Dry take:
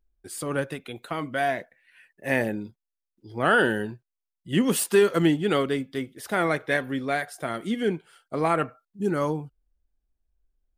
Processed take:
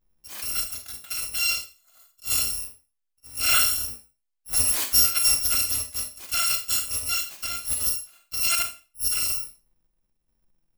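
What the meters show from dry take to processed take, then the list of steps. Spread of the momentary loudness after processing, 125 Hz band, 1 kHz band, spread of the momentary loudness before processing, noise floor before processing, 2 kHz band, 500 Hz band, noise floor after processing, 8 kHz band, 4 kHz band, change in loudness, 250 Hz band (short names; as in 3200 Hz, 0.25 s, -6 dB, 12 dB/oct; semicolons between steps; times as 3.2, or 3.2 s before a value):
14 LU, -12.0 dB, -8.5 dB, 15 LU, under -85 dBFS, -4.5 dB, -23.5 dB, -78 dBFS, +14.0 dB, +11.0 dB, +3.5 dB, -23.5 dB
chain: FFT order left unsorted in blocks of 256 samples; Schroeder reverb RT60 0.31 s, combs from 28 ms, DRR 5.5 dB; gain -1 dB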